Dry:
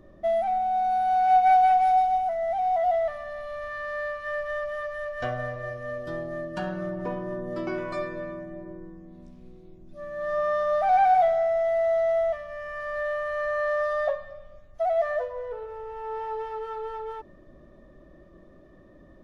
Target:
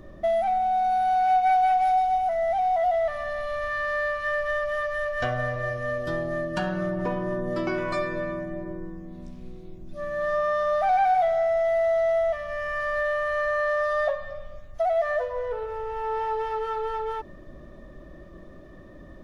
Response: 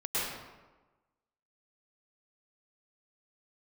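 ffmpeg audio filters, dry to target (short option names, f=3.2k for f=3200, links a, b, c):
-af "equalizer=f=410:t=o:w=3:g=-4,acompressor=threshold=-34dB:ratio=2,volume=9dB"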